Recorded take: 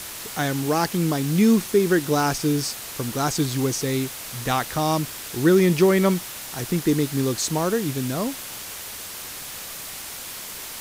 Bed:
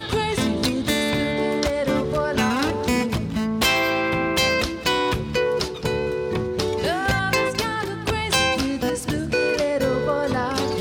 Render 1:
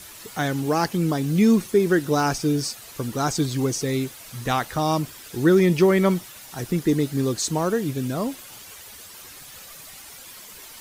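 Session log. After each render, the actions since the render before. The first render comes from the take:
broadband denoise 10 dB, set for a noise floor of −36 dBFS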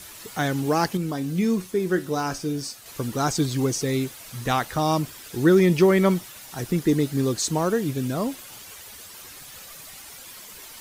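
0:00.97–0:02.86: tuned comb filter 92 Hz, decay 0.25 s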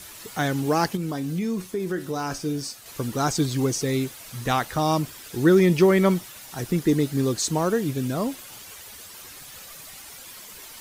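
0:00.95–0:02.31: downward compressor 3 to 1, threshold −24 dBFS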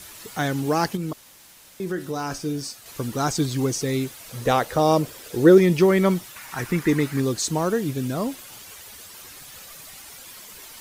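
0:01.13–0:01.80: fill with room tone
0:04.29–0:05.58: parametric band 500 Hz +11.5 dB 0.75 octaves
0:06.36–0:07.20: flat-topped bell 1,500 Hz +9.5 dB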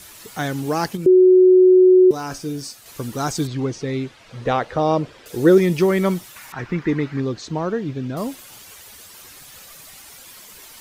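0:01.06–0:02.11: beep over 369 Hz −7.5 dBFS
0:03.47–0:05.26: low-pass filter 3,500 Hz
0:06.52–0:08.17: high-frequency loss of the air 190 metres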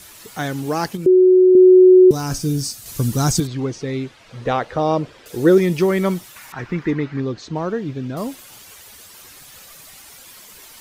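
0:01.55–0:03.40: bass and treble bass +13 dB, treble +9 dB
0:06.91–0:07.56: high-frequency loss of the air 59 metres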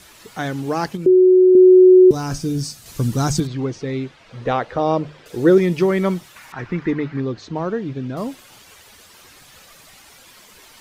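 high-shelf EQ 7,600 Hz −11 dB
mains-hum notches 50/100/150 Hz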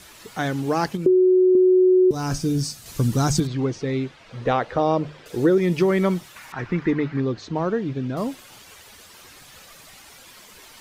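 downward compressor, threshold −14 dBFS, peak gain reduction 7 dB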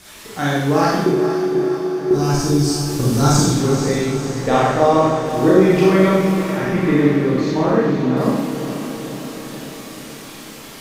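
feedback delay with all-pass diffusion 473 ms, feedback 65%, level −9.5 dB
four-comb reverb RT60 1 s, combs from 28 ms, DRR −6.5 dB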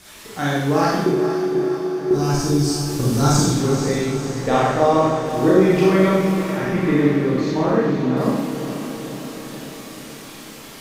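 level −2 dB

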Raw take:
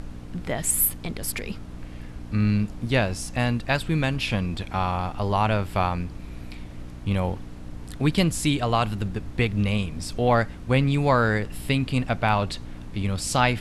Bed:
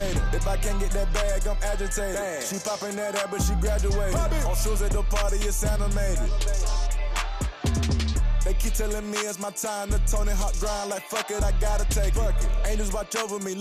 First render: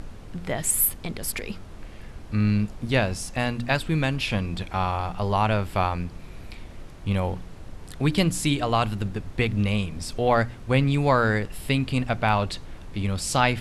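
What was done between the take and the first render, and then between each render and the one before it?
hum removal 60 Hz, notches 5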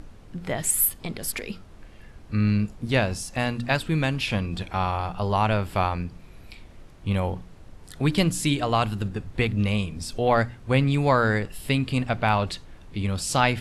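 noise reduction from a noise print 6 dB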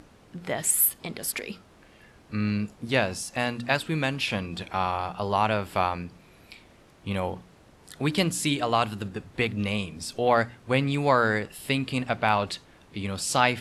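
high-pass filter 240 Hz 6 dB per octave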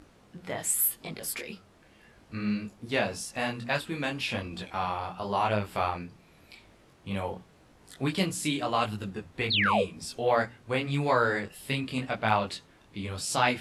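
0:09.50–0:09.83: sound drawn into the spectrogram fall 410–4,600 Hz −21 dBFS
micro pitch shift up and down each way 31 cents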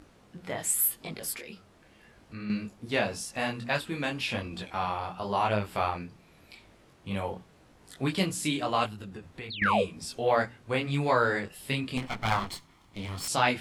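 0:01.34–0:02.50: downward compressor 1.5 to 1, threshold −45 dBFS
0:08.86–0:09.62: downward compressor 4 to 1, threshold −38 dBFS
0:11.97–0:13.28: lower of the sound and its delayed copy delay 0.93 ms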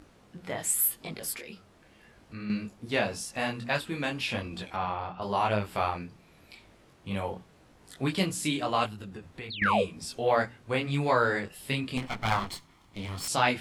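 0:04.76–0:05.22: high-frequency loss of the air 180 metres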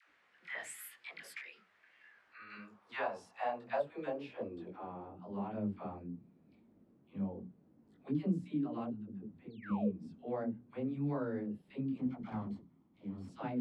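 band-pass filter sweep 1,900 Hz → 230 Hz, 0:02.02–0:05.29
all-pass dispersion lows, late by 100 ms, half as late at 570 Hz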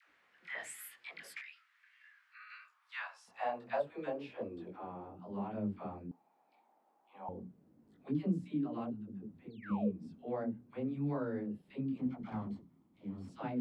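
0:01.41–0:03.28: high-pass filter 1,200 Hz 24 dB per octave
0:06.11–0:07.29: high-pass with resonance 820 Hz, resonance Q 8.4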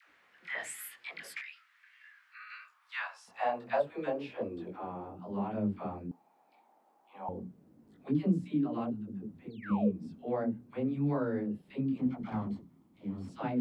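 level +5 dB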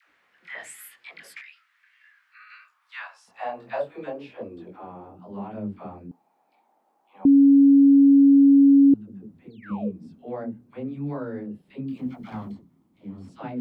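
0:03.56–0:04.04: double-tracking delay 23 ms −4 dB
0:07.25–0:08.94: beep over 278 Hz −10.5 dBFS
0:11.88–0:12.52: high-shelf EQ 2,500 Hz +10 dB

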